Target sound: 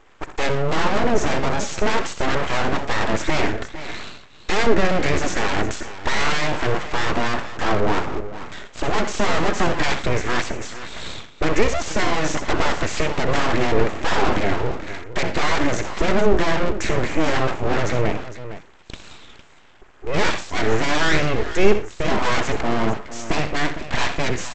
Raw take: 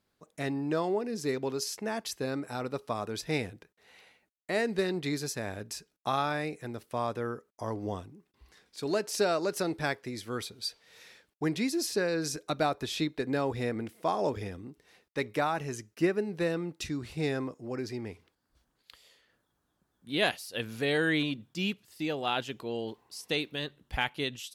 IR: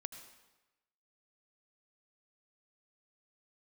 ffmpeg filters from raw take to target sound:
-filter_complex "[0:a]asuperstop=centerf=3800:order=8:qfactor=0.95,asplit=2[a][b];[b]highpass=f=720:p=1,volume=33dB,asoftclip=type=tanh:threshold=-15dB[c];[a][c]amix=inputs=2:normalize=0,lowpass=f=2.1k:p=1,volume=-6dB,lowshelf=f=250:t=q:w=3:g=6,aecho=1:1:63|82|119|458:0.251|0.188|0.112|0.224,aresample=16000,aeval=exprs='abs(val(0))':c=same,aresample=44100,volume=5.5dB"

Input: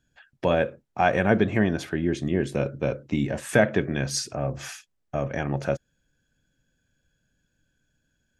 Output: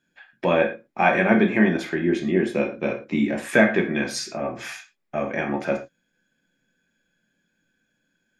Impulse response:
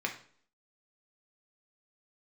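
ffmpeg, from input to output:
-filter_complex "[0:a]equalizer=f=120:t=o:w=0.73:g=-13[a];[1:a]atrim=start_sample=2205,afade=t=out:st=0.17:d=0.01,atrim=end_sample=7938[b];[a][b]afir=irnorm=-1:irlink=0"

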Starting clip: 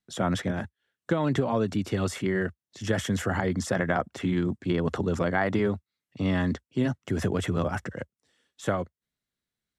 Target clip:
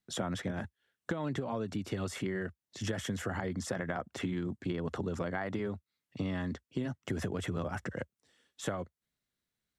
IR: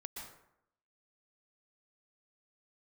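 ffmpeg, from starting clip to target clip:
-af "acompressor=threshold=-32dB:ratio=6"

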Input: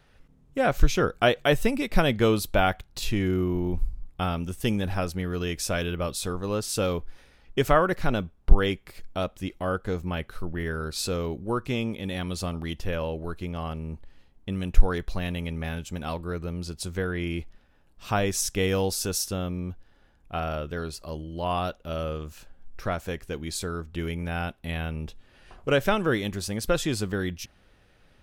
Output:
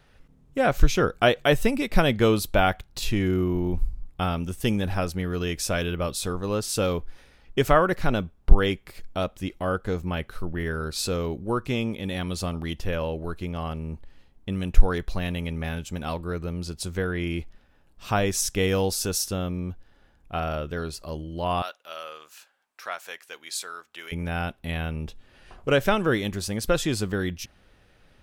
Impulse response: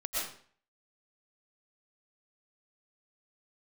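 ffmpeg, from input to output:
-filter_complex "[0:a]asettb=1/sr,asplit=3[a][b][c];[a]atrim=end=21.624[d];[b]atrim=start=21.62:end=24.12,asetpts=PTS-STARTPTS,afade=t=in:d=0.004:c=qsin,afade=t=out:st=2.496:d=0.004:c=qsin,highpass=1k[e];[c]atrim=start=24.116[f];[d][e]acrossfade=d=0.004:c1=hsin:c2=qsin[g];[g][f]acrossfade=d=0.004:c1=qsin:c2=hsin,volume=1.5dB"

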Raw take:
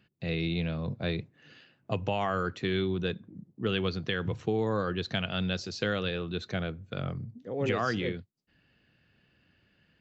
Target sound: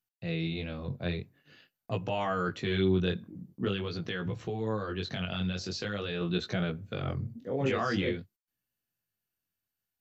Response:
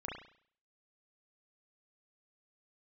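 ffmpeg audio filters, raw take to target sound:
-filter_complex "[0:a]agate=range=-27dB:threshold=-55dB:ratio=16:detection=peak,dynaudnorm=f=520:g=9:m=6.5dB,alimiter=limit=-17dB:level=0:latency=1:release=26,asettb=1/sr,asplit=3[a][b][c];[a]atrim=end=3.684[d];[b]atrim=start=3.68:end=6.21,asetpts=PTS-STARTPTS,afade=t=in:d=0.004:c=qsin,afade=t=out:st=2.526:d=0.004:c=qsin,acompressor=threshold=-31dB:ratio=2[e];[c]atrim=start=6.206[f];[d][e]acrossfade=d=0.004:c1=hsin:c2=qsin[g];[g][f]acrossfade=d=0.004:c1=qsin:c2=hsin,flanger=delay=16.5:depth=6.1:speed=0.46" -ar 48000 -c:a mp2 -b:a 192k

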